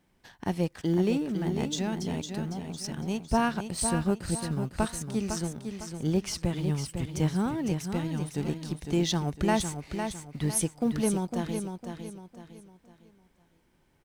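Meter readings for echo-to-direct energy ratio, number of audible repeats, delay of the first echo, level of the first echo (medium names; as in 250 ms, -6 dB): -6.5 dB, 4, 505 ms, -7.0 dB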